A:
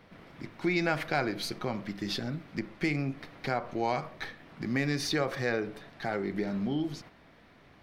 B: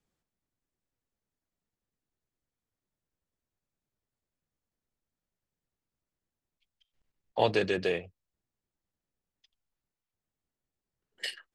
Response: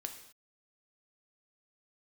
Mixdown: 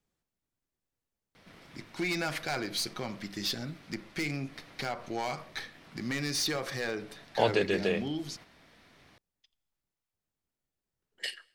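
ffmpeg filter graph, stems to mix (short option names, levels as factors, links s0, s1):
-filter_complex "[0:a]equalizer=f=8400:w=0.35:g=12.5,asoftclip=type=hard:threshold=0.075,adelay=1350,volume=0.631[s0];[1:a]volume=0.841,asplit=2[s1][s2];[s2]volume=0.237[s3];[2:a]atrim=start_sample=2205[s4];[s3][s4]afir=irnorm=-1:irlink=0[s5];[s0][s1][s5]amix=inputs=3:normalize=0"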